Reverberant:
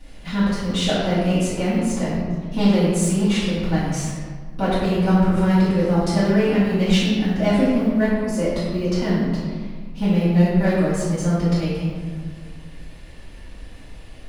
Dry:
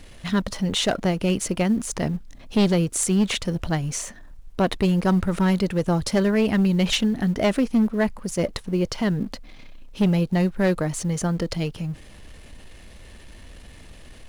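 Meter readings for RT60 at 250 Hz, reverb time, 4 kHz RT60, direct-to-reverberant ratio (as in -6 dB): 2.4 s, 1.7 s, 1.0 s, -13.0 dB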